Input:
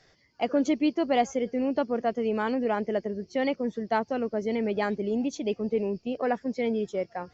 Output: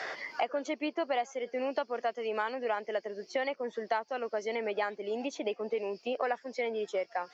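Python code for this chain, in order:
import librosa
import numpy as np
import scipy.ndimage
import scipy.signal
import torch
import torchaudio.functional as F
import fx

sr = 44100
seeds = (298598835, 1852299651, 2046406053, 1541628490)

y = scipy.signal.sosfilt(scipy.signal.butter(2, 700.0, 'highpass', fs=sr, output='sos'), x)
y = fx.high_shelf(y, sr, hz=4200.0, db=-8.0)
y = fx.band_squash(y, sr, depth_pct=100)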